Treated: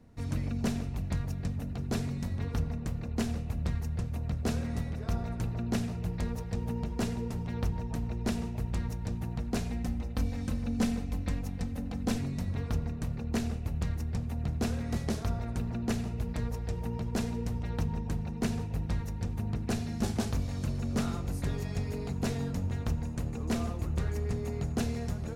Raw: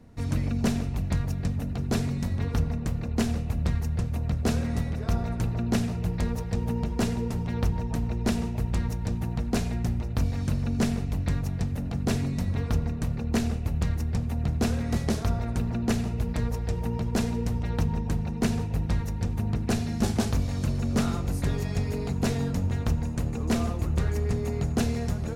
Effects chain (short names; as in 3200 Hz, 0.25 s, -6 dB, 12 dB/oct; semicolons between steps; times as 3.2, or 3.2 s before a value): 9.7–12.19 comb 3.9 ms, depth 61%; gain -5.5 dB